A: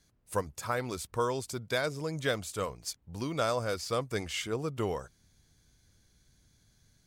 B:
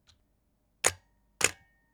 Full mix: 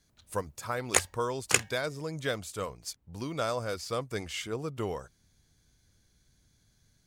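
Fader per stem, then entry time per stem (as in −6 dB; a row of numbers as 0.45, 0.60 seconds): −1.5, +1.0 decibels; 0.00, 0.10 seconds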